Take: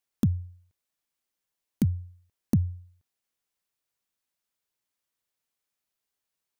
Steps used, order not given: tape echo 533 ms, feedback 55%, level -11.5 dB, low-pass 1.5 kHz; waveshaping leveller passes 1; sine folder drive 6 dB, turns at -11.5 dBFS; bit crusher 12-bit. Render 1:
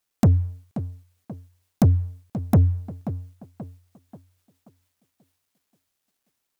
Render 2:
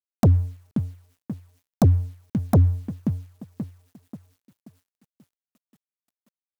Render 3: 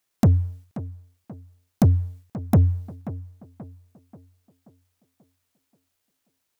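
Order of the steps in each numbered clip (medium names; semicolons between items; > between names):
sine folder > tape echo > waveshaping leveller > bit crusher; tape echo > bit crusher > waveshaping leveller > sine folder; sine folder > bit crusher > waveshaping leveller > tape echo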